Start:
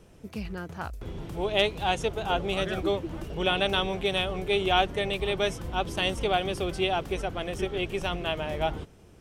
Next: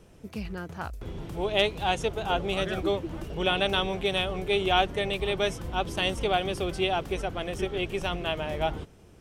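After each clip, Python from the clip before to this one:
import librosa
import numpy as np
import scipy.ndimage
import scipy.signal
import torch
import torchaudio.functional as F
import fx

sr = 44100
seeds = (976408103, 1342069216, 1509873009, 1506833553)

y = x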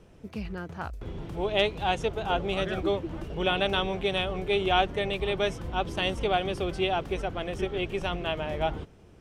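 y = fx.high_shelf(x, sr, hz=6900.0, db=-11.0)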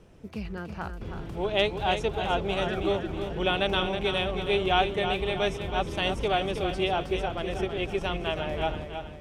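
y = fx.echo_feedback(x, sr, ms=321, feedback_pct=47, wet_db=-8)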